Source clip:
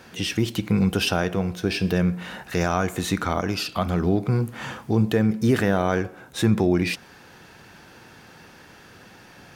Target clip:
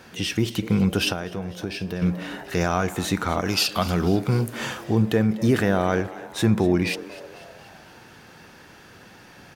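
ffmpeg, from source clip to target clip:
-filter_complex "[0:a]asettb=1/sr,asplit=3[s0][s1][s2];[s0]atrim=end=3.454[s3];[s1]atrim=start=3.45:end=4.84,asetpts=PTS-STARTPTS,afade=t=in:d=0.004:c=qsin,afade=t=out:st=1.386:d=0.004:c=qsin,highshelf=f=2500:g=9.5[s4];[s2]atrim=start=4.836[s5];[s3][s4]acrossfade=d=0.004:c1=hsin:c2=qsin[s6];[s6][s5]acrossfade=d=0.004:c1=qsin:c2=hsin,asplit=6[s7][s8][s9][s10][s11][s12];[s8]adelay=247,afreqshift=110,volume=0.133[s13];[s9]adelay=494,afreqshift=220,volume=0.0716[s14];[s10]adelay=741,afreqshift=330,volume=0.0389[s15];[s11]adelay=988,afreqshift=440,volume=0.0209[s16];[s12]adelay=1235,afreqshift=550,volume=0.0114[s17];[s7][s13][s14][s15][s16][s17]amix=inputs=6:normalize=0,asettb=1/sr,asplit=3[s18][s19][s20];[s18]atrim=end=1.124[s21];[s19]atrim=start=1.12:end=2.02,asetpts=PTS-STARTPTS,afade=t=in:d=0.004:c=qsin,afade=t=out:st=0.896:d=0.004:c=qsin,acompressor=threshold=0.0355:ratio=2.5[s22];[s20]atrim=start=2.016[s23];[s21][s22]acrossfade=d=0.004:c1=hsin:c2=qsin[s24];[s24][s23]acrossfade=d=0.004:c1=qsin:c2=hsin"

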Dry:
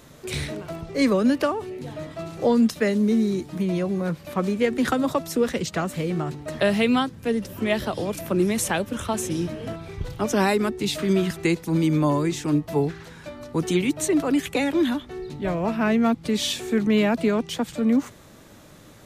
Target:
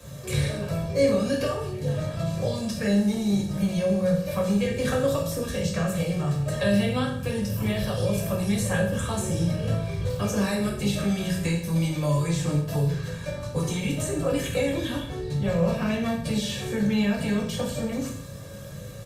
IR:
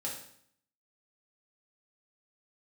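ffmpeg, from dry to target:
-filter_complex "[0:a]highpass=41,bass=f=250:g=10,treble=f=4000:g=4,aecho=1:1:1.8:0.71,acrossover=split=190|2300[s0][s1][s2];[s0]acompressor=threshold=0.0398:ratio=4[s3];[s1]acompressor=threshold=0.0398:ratio=4[s4];[s2]acompressor=threshold=0.0158:ratio=4[s5];[s3][s4][s5]amix=inputs=3:normalize=0,acrossover=split=140|440|1800[s6][s7][s8][s9];[s7]asoftclip=type=tanh:threshold=0.0447[s10];[s6][s10][s8][s9]amix=inputs=4:normalize=0[s11];[1:a]atrim=start_sample=2205,afade=t=out:st=0.31:d=0.01,atrim=end_sample=14112[s12];[s11][s12]afir=irnorm=-1:irlink=0" -ar 48000 -c:a libopus -b:a 48k

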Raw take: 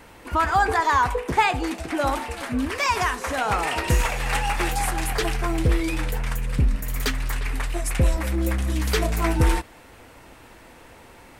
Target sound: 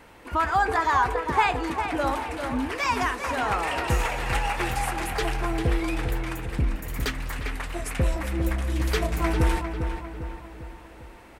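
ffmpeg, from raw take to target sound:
-filter_complex "[0:a]bass=f=250:g=-2,treble=f=4000:g=-4,asplit=2[s0][s1];[s1]adelay=401,lowpass=f=2900:p=1,volume=0.447,asplit=2[s2][s3];[s3]adelay=401,lowpass=f=2900:p=1,volume=0.51,asplit=2[s4][s5];[s5]adelay=401,lowpass=f=2900:p=1,volume=0.51,asplit=2[s6][s7];[s7]adelay=401,lowpass=f=2900:p=1,volume=0.51,asplit=2[s8][s9];[s9]adelay=401,lowpass=f=2900:p=1,volume=0.51,asplit=2[s10][s11];[s11]adelay=401,lowpass=f=2900:p=1,volume=0.51[s12];[s0][s2][s4][s6][s8][s10][s12]amix=inputs=7:normalize=0,volume=0.75"

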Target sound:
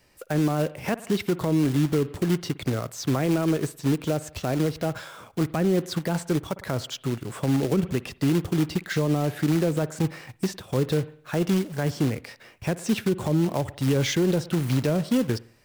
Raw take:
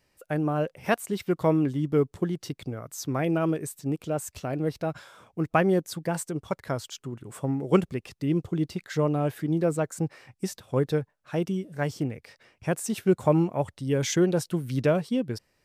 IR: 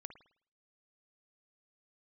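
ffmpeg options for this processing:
-filter_complex "[0:a]acrossover=split=5200[s0][s1];[s1]acompressor=threshold=0.00251:ratio=4:attack=1:release=60[s2];[s0][s2]amix=inputs=2:normalize=0,acrusher=bits=3:mode=log:mix=0:aa=0.000001,asplit=2[s3][s4];[1:a]atrim=start_sample=2205[s5];[s4][s5]afir=irnorm=-1:irlink=0,volume=0.531[s6];[s3][s6]amix=inputs=2:normalize=0,acrossover=split=400[s7][s8];[s8]acompressor=threshold=0.0447:ratio=6[s9];[s7][s9]amix=inputs=2:normalize=0,alimiter=limit=0.0944:level=0:latency=1:release=81,volume=2"

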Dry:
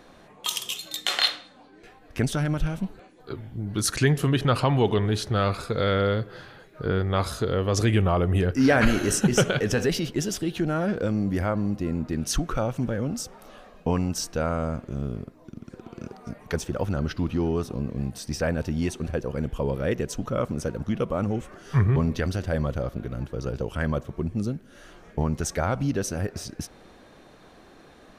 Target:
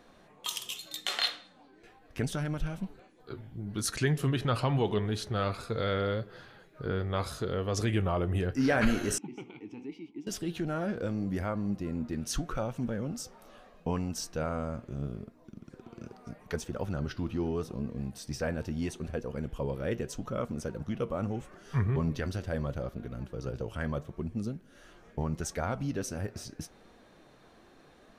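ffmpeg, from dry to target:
-filter_complex "[0:a]flanger=delay=4.2:depth=4.7:regen=77:speed=0.78:shape=sinusoidal,asettb=1/sr,asplit=3[s0][s1][s2];[s0]atrim=end=9.184[s3];[s1]atrim=start=9.18:end=10.27,asetpts=PTS-STARTPTS,afade=t=in:d=0.004:c=qsin,afade=t=out:st=1.086:d=0.004:c=qsin,asplit=3[s4][s5][s6];[s4]bandpass=f=300:t=q:w=8,volume=1[s7];[s5]bandpass=f=870:t=q:w=8,volume=0.501[s8];[s6]bandpass=f=2240:t=q:w=8,volume=0.355[s9];[s7][s8][s9]amix=inputs=3:normalize=0[s10];[s2]atrim=start=10.266[s11];[s3][s10]acrossfade=d=0.004:c1=hsin:c2=qsin[s12];[s12][s11]acrossfade=d=0.004:c1=qsin:c2=hsin,volume=0.75"

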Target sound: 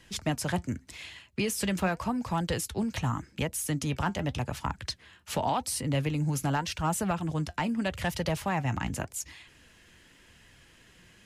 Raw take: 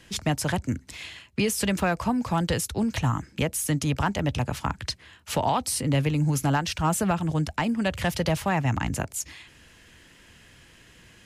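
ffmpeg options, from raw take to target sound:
-af "flanger=delay=1:depth=4.7:regen=75:speed=0.86:shape=sinusoidal"

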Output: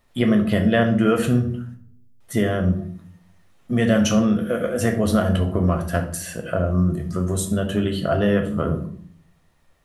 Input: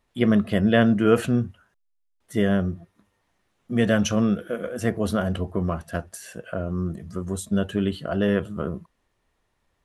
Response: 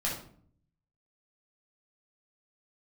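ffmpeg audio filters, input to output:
-filter_complex "[0:a]acompressor=threshold=0.0631:ratio=2.5,asplit=2[s0][s1];[1:a]atrim=start_sample=2205,highshelf=f=8600:g=11[s2];[s1][s2]afir=irnorm=-1:irlink=0,volume=0.447[s3];[s0][s3]amix=inputs=2:normalize=0,volume=1.5"

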